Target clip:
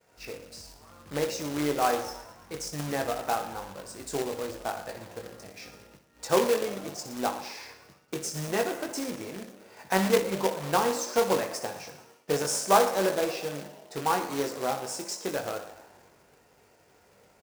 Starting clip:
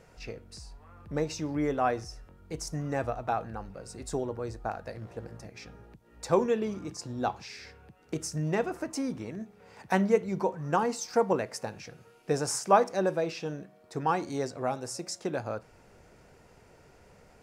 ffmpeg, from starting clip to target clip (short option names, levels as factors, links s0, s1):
-filter_complex "[0:a]asplit=2[s0][s1];[s1]adelay=21,volume=0.531[s2];[s0][s2]amix=inputs=2:normalize=0,asplit=2[s3][s4];[s4]asplit=6[s5][s6][s7][s8][s9][s10];[s5]adelay=112,afreqshift=63,volume=0.141[s11];[s6]adelay=224,afreqshift=126,volume=0.0861[s12];[s7]adelay=336,afreqshift=189,volume=0.0525[s13];[s8]adelay=448,afreqshift=252,volume=0.032[s14];[s9]adelay=560,afreqshift=315,volume=0.0195[s15];[s10]adelay=672,afreqshift=378,volume=0.0119[s16];[s11][s12][s13][s14][s15][s16]amix=inputs=6:normalize=0[s17];[s3][s17]amix=inputs=2:normalize=0,agate=range=0.0224:threshold=0.00282:ratio=3:detection=peak,highpass=56,asplit=2[s18][s19];[s19]aecho=0:1:61|122|183|244|305|366:0.299|0.164|0.0903|0.0497|0.0273|0.015[s20];[s18][s20]amix=inputs=2:normalize=0,acrusher=bits=2:mode=log:mix=0:aa=0.000001,bass=f=250:g=-7,treble=f=4000:g=1"